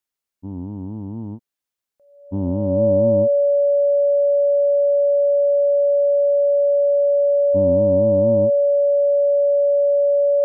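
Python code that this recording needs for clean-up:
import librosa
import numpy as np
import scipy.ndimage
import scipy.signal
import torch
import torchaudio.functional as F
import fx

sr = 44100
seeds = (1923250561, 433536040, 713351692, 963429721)

y = fx.notch(x, sr, hz=570.0, q=30.0)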